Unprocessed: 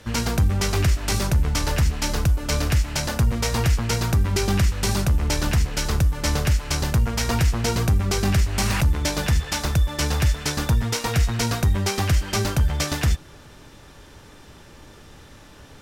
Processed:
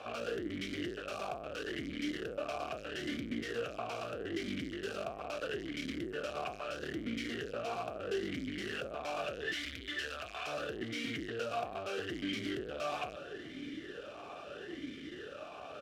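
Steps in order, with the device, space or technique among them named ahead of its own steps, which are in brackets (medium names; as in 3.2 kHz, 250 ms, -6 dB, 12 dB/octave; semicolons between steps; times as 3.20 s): talk box (valve stage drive 38 dB, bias 0.4; talking filter a-i 0.77 Hz); 9.53–10.47 s: FFT filter 100 Hz 0 dB, 160 Hz -18 dB, 1.6 kHz +3 dB; echo from a far wall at 290 m, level -22 dB; trim +16 dB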